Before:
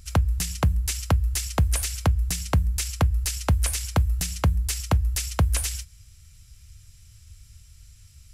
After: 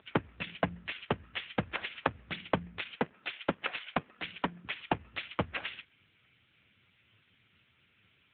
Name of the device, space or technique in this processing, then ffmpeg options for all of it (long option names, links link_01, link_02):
telephone: -filter_complex "[0:a]asettb=1/sr,asplit=3[link_01][link_02][link_03];[link_01]atrim=end=2.944[link_04];[link_02]atrim=start=2.94:end=4.65,asetpts=PTS-STARTPTS,afade=type=in:duration=0.004:curve=qsin,afade=type=out:start_time=1.706:duration=0.004:curve=qsin,highpass=frequency=180:width=0.5412,highpass=frequency=180:width=1.3066[link_05];[link_03]atrim=start=4.646[link_06];[link_04][link_05]acrossfade=duration=0.004:curve1=hsin:curve2=qsin[link_07];[link_07][link_06]acrossfade=duration=0.004:curve1=qsin:curve2=hsin,highpass=290,lowpass=3200,volume=6dB" -ar 8000 -c:a libopencore_amrnb -b:a 6700